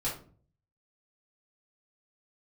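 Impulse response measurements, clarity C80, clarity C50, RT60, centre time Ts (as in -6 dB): 12.5 dB, 6.0 dB, 0.45 s, 30 ms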